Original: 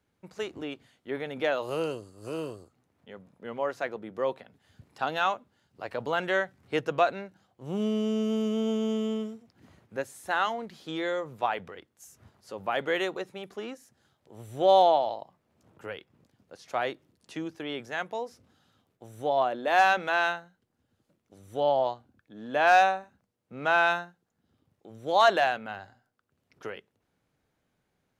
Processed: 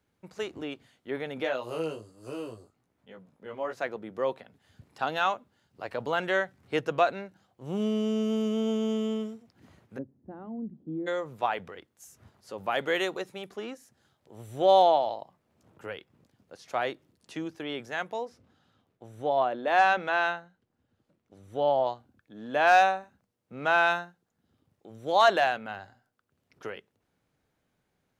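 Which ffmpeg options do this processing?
ffmpeg -i in.wav -filter_complex "[0:a]asplit=3[link_01][link_02][link_03];[link_01]afade=type=out:start_time=1.43:duration=0.02[link_04];[link_02]flanger=delay=15.5:depth=3.7:speed=1.3,afade=type=in:start_time=1.43:duration=0.02,afade=type=out:start_time=3.76:duration=0.02[link_05];[link_03]afade=type=in:start_time=3.76:duration=0.02[link_06];[link_04][link_05][link_06]amix=inputs=3:normalize=0,asplit=3[link_07][link_08][link_09];[link_07]afade=type=out:start_time=9.97:duration=0.02[link_10];[link_08]lowpass=frequency=250:width_type=q:width=2.2,afade=type=in:start_time=9.97:duration=0.02,afade=type=out:start_time=11.06:duration=0.02[link_11];[link_09]afade=type=in:start_time=11.06:duration=0.02[link_12];[link_10][link_11][link_12]amix=inputs=3:normalize=0,asettb=1/sr,asplit=3[link_13][link_14][link_15];[link_13]atrim=end=12.584[link_16];[link_14]atrim=start=12.58:end=13.47,asetpts=PTS-STARTPTS,afade=type=in:duration=0.004:curve=qsin,afade=type=out:start_time=0.886:duration=0.004:curve=qsin,highshelf=frequency=4300:gain=5.5[link_17];[link_15]atrim=start=13.466[link_18];[link_16][link_17]acrossfade=duration=0.004:curve1=hsin:curve2=qsin[link_19];[link_19][link_18]acrossfade=duration=0.004:curve1=qsin:curve2=hsin,asettb=1/sr,asplit=3[link_20][link_21][link_22];[link_20]atrim=end=18.254[link_23];[link_21]atrim=start=18.25:end=21.87,asetpts=PTS-STARTPTS,afade=type=in:duration=0.004:curve=qsin,afade=type=out:start_time=3.616:duration=0.004:curve=qsin,lowpass=frequency=3500:poles=1[link_24];[link_22]atrim=start=21.866[link_25];[link_23][link_24]acrossfade=duration=0.004:curve1=hsin:curve2=qsin[link_26];[link_26][link_25]acrossfade=duration=0.004:curve1=qsin:curve2=hsin" out.wav

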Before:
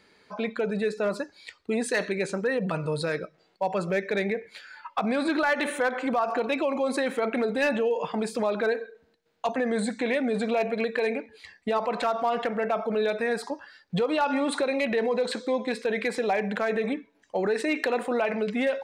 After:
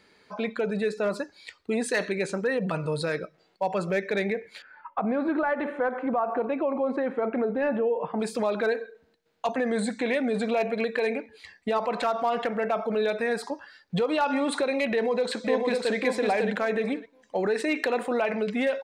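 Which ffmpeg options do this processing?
ffmpeg -i in.wav -filter_complex "[0:a]asettb=1/sr,asplit=3[link_01][link_02][link_03];[link_01]atrim=end=4.624[link_04];[link_02]atrim=start=4.62:end=8.2,asetpts=PTS-STARTPTS,afade=type=in:duration=0.004:curve=qsin,afade=type=out:start_time=3.576:duration=0.004:curve=qsin,lowpass=1300[link_05];[link_03]atrim=start=8.196[link_06];[link_04][link_05]acrossfade=duration=0.004:curve1=hsin:curve2=qsin[link_07];[link_07][link_06]acrossfade=duration=0.004:curve1=qsin:curve2=hsin,asplit=2[link_08][link_09];[link_09]afade=type=in:start_time=14.89:duration=0.01,afade=type=out:start_time=15.95:duration=0.01,aecho=0:1:550|1100|1650:0.749894|0.112484|0.0168726[link_10];[link_08][link_10]amix=inputs=2:normalize=0" out.wav

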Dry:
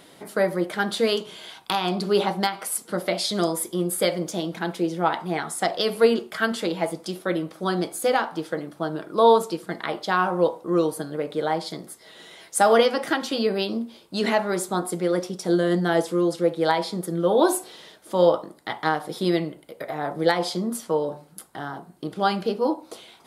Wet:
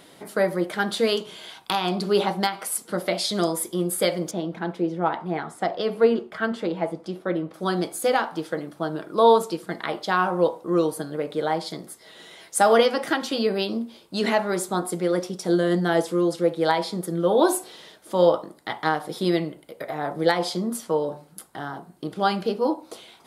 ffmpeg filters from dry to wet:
ffmpeg -i in.wav -filter_complex "[0:a]asettb=1/sr,asplit=3[link_01][link_02][link_03];[link_01]atrim=end=4.314[link_04];[link_02]atrim=start=4.31:end=7.54,asetpts=PTS-STARTPTS,afade=type=in:duration=0.004:curve=qsin,afade=type=out:start_time=3.226:duration=0.004:curve=qsin,lowpass=frequency=1400:poles=1[link_05];[link_03]atrim=start=7.536[link_06];[link_04][link_05]acrossfade=duration=0.004:curve1=hsin:curve2=qsin[link_07];[link_07][link_06]acrossfade=duration=0.004:curve1=qsin:curve2=hsin" out.wav

